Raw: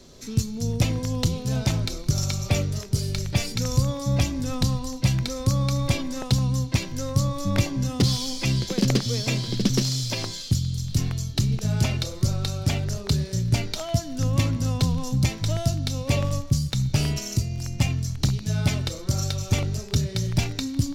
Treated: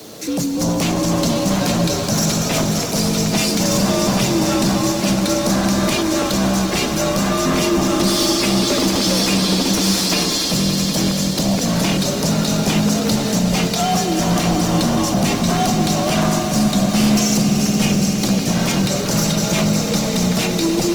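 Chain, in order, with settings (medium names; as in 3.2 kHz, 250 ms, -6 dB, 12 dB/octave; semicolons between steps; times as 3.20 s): high-pass 140 Hz 6 dB/octave; peak limiter -19.5 dBFS, peak gain reduction 10.5 dB; frequency shift +64 Hz; bit crusher 9-bit; sine folder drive 11 dB, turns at -15 dBFS; on a send: echo with a slow build-up 95 ms, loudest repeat 5, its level -12 dB; on the sum: Opus 24 kbps 48 kHz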